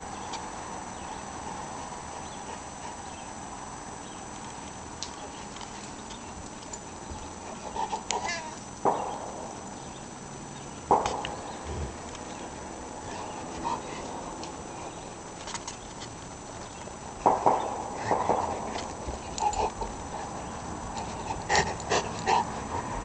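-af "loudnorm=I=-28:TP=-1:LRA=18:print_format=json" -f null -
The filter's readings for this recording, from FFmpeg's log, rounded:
"input_i" : "-32.9",
"input_tp" : "-6.8",
"input_lra" : "9.4",
"input_thresh" : "-42.9",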